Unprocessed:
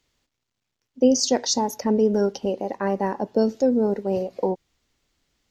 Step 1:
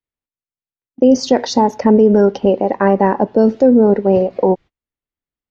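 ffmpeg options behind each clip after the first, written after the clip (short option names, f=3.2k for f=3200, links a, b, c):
-af "lowpass=2.5k,agate=range=-32dB:threshold=-41dB:ratio=16:detection=peak,alimiter=level_in=13dB:limit=-1dB:release=50:level=0:latency=1,volume=-1dB"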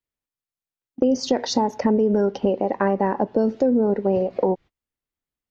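-af "acompressor=threshold=-20dB:ratio=2.5"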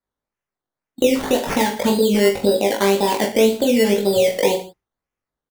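-filter_complex "[0:a]asplit=2[a][b];[b]adelay=18,volume=-5.5dB[c];[a][c]amix=inputs=2:normalize=0,acrusher=samples=14:mix=1:aa=0.000001:lfo=1:lforange=8.4:lforate=1.9,aecho=1:1:20|45|76.25|115.3|164.1:0.631|0.398|0.251|0.158|0.1"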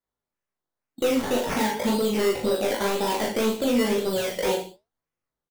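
-filter_complex "[0:a]asoftclip=type=tanh:threshold=-14.5dB,asplit=2[a][b];[b]adelay=37,volume=-4.5dB[c];[a][c]amix=inputs=2:normalize=0,flanger=delay=5.9:depth=9.4:regen=68:speed=0.97:shape=sinusoidal"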